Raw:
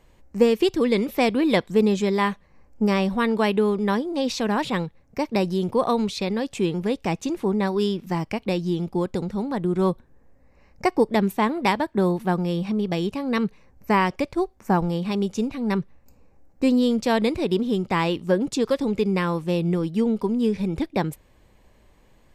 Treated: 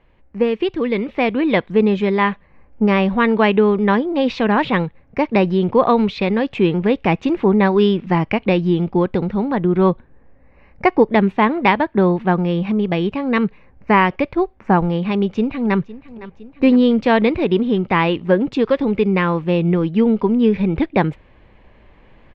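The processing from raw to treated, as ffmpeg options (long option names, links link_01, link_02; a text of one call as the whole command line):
ffmpeg -i in.wav -filter_complex "[0:a]asplit=2[link_01][link_02];[link_02]afade=type=in:start_time=15.14:duration=0.01,afade=type=out:start_time=15.78:duration=0.01,aecho=0:1:510|1020|1530|2040|2550|3060|3570:0.133352|0.0866789|0.0563413|0.0366218|0.0238042|0.0154727|0.0100573[link_03];[link_01][link_03]amix=inputs=2:normalize=0,lowpass=frequency=2700:width=0.5412,lowpass=frequency=2700:width=1.3066,aemphasis=mode=production:type=75kf,dynaudnorm=framelen=290:gausssize=9:maxgain=11.5dB" out.wav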